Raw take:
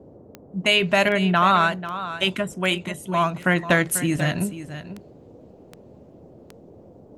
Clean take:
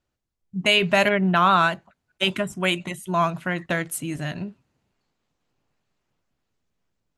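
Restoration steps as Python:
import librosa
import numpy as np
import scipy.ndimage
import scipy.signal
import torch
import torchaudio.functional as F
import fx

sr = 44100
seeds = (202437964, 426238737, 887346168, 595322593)

y = fx.fix_declick_ar(x, sr, threshold=10.0)
y = fx.noise_reduce(y, sr, print_start_s=5.64, print_end_s=6.14, reduce_db=30.0)
y = fx.fix_echo_inverse(y, sr, delay_ms=491, level_db=-12.5)
y = fx.gain(y, sr, db=fx.steps((0.0, 0.0), (3.44, -6.5)))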